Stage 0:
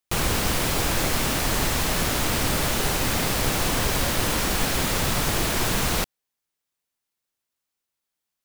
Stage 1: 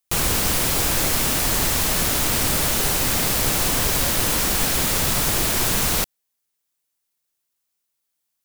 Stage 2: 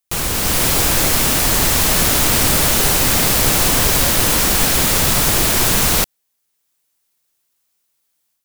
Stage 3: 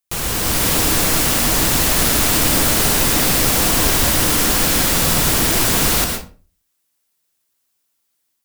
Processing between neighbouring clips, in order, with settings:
treble shelf 5.5 kHz +8.5 dB
level rider gain up to 8.5 dB
reverberation RT60 0.40 s, pre-delay 105 ms, DRR 3.5 dB; trim -2.5 dB

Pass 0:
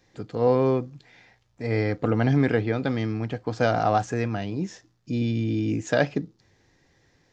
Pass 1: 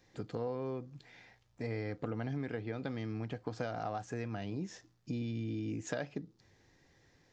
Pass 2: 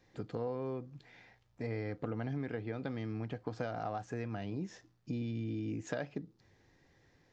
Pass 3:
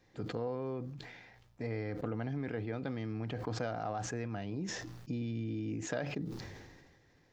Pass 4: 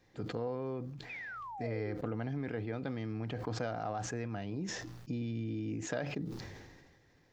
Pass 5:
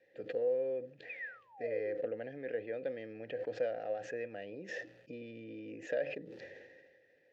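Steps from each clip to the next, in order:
compression 6:1, threshold -31 dBFS, peak gain reduction 14.5 dB; trim -4 dB
treble shelf 5 kHz -8 dB
decay stretcher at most 37 dB/s
painted sound fall, 1.09–1.95 s, 320–2600 Hz -44 dBFS
vowel filter e; trim +10 dB

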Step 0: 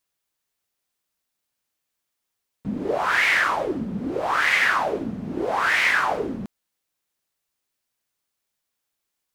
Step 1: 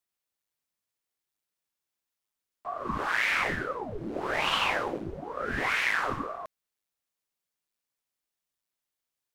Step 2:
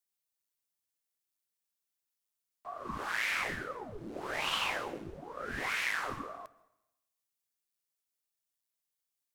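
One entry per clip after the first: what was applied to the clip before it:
ring modulator with a swept carrier 490 Hz, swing 90%, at 1.1 Hz; trim -4.5 dB
treble shelf 4.2 kHz +9.5 dB; reverberation RT60 0.90 s, pre-delay 108 ms, DRR 20 dB; trim -8 dB

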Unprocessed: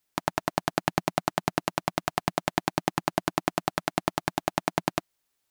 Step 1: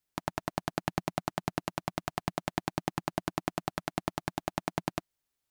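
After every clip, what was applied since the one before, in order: bass shelf 180 Hz +7.5 dB; trim -7.5 dB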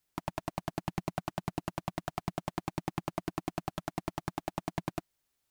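saturation -27 dBFS, distortion -5 dB; trim +4 dB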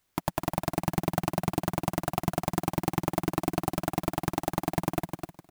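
on a send: feedback delay 255 ms, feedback 22%, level -6.5 dB; on the sum: sampling jitter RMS 0.053 ms; trim +7.5 dB

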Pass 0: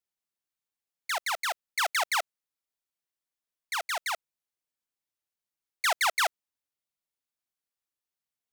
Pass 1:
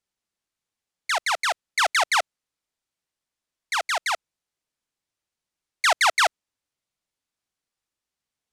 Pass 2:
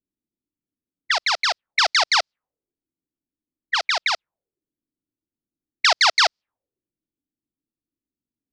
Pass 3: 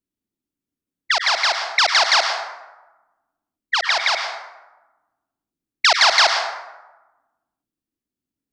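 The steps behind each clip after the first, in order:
low-pass 9.1 kHz 12 dB/octave; bass shelf 250 Hz +4.5 dB; trim +6.5 dB
touch-sensitive low-pass 290–4900 Hz up, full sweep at -22.5 dBFS
plate-style reverb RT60 1.1 s, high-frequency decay 0.5×, pre-delay 85 ms, DRR 4.5 dB; trim +2 dB

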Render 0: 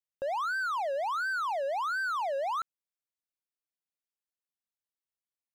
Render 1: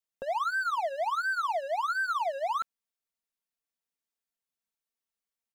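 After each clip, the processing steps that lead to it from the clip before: comb 4.4 ms, depth 67%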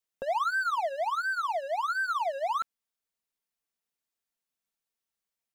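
gain riding 2 s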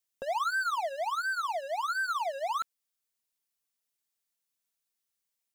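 treble shelf 3.1 kHz +8.5 dB; trim -3 dB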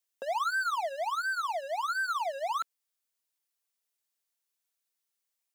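high-pass 310 Hz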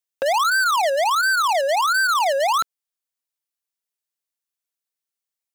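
waveshaping leveller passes 5; trim +6 dB

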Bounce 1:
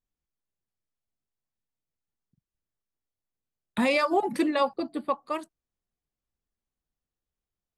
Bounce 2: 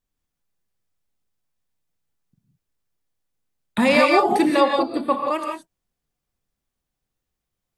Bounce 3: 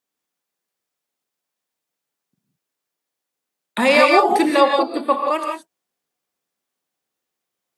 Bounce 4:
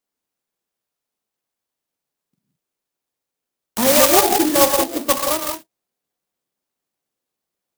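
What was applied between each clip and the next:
gated-style reverb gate 200 ms rising, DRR 1.5 dB; trim +6 dB
high-pass 320 Hz 12 dB/octave; trim +3.5 dB
sampling jitter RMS 0.15 ms

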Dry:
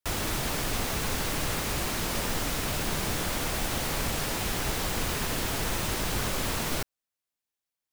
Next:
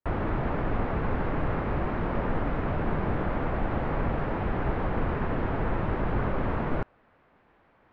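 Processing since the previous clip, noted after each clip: Bessel low-pass 1.2 kHz, order 4; reverse; upward compressor, threshold -40 dBFS; reverse; trim +4.5 dB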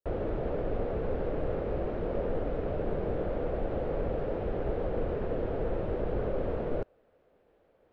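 graphic EQ 125/250/500/1000/2000 Hz -4/-4/+11/-10/-7 dB; trim -4 dB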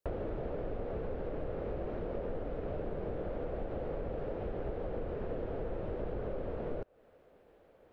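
compression 5:1, threshold -39 dBFS, peak gain reduction 12 dB; trim +4 dB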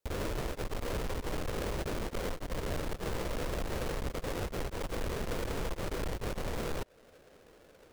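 square wave that keeps the level; peak limiter -30 dBFS, peak gain reduction 33 dB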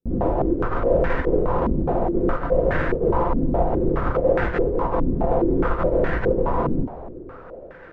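two-slope reverb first 0.21 s, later 3.2 s, from -21 dB, DRR -2 dB; step-sequenced low-pass 4.8 Hz 260–1700 Hz; trim +7.5 dB

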